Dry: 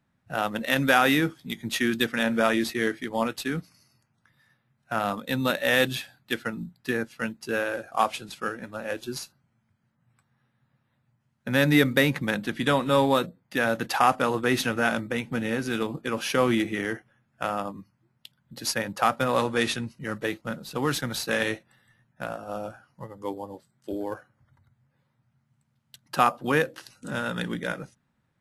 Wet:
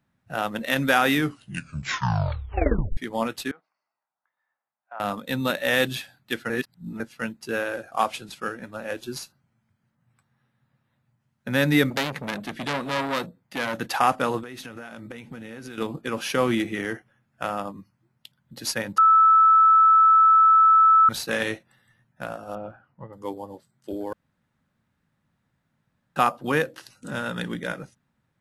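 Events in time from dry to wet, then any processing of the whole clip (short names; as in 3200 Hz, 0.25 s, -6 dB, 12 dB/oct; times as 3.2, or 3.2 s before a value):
1.13 tape stop 1.84 s
3.51–5 ladder band-pass 950 Hz, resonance 40%
6.5–7 reverse
11.9–13.74 core saturation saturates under 3300 Hz
14.42–15.78 compressor 16:1, threshold -34 dBFS
18.98–21.09 bleep 1310 Hz -12 dBFS
22.55–23.13 air absorption 450 m
24.13–26.16 room tone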